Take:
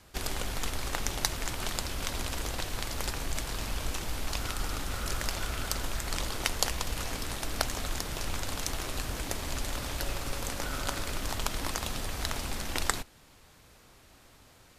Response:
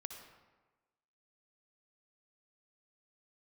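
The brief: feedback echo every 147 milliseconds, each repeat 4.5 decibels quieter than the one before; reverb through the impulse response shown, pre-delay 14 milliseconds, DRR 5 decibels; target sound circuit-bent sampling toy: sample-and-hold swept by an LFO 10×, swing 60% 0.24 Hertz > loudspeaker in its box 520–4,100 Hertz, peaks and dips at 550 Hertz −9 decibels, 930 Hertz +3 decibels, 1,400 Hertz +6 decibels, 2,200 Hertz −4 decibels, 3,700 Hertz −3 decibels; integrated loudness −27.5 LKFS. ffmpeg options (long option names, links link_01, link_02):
-filter_complex "[0:a]aecho=1:1:147|294|441|588|735|882|1029|1176|1323:0.596|0.357|0.214|0.129|0.0772|0.0463|0.0278|0.0167|0.01,asplit=2[link_01][link_02];[1:a]atrim=start_sample=2205,adelay=14[link_03];[link_02][link_03]afir=irnorm=-1:irlink=0,volume=-2dB[link_04];[link_01][link_04]amix=inputs=2:normalize=0,acrusher=samples=10:mix=1:aa=0.000001:lfo=1:lforange=6:lforate=0.24,highpass=520,equalizer=frequency=550:width_type=q:width=4:gain=-9,equalizer=frequency=930:width_type=q:width=4:gain=3,equalizer=frequency=1400:width_type=q:width=4:gain=6,equalizer=frequency=2200:width_type=q:width=4:gain=-4,equalizer=frequency=3700:width_type=q:width=4:gain=-3,lowpass=frequency=4100:width=0.5412,lowpass=frequency=4100:width=1.3066,volume=6.5dB"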